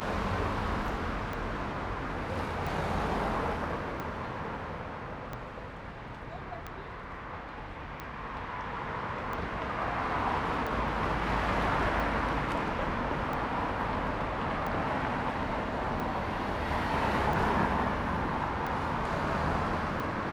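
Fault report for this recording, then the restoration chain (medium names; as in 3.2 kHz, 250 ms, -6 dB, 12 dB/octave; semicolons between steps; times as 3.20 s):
tick 45 rpm -23 dBFS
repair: de-click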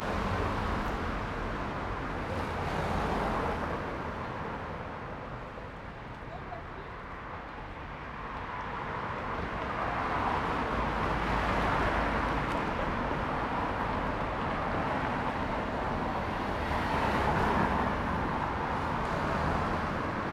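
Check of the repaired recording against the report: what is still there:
nothing left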